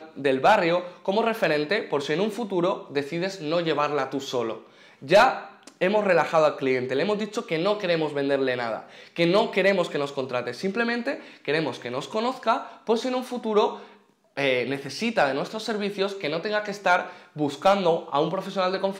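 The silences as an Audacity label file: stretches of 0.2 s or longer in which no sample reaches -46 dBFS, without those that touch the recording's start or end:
13.970000	14.360000	silence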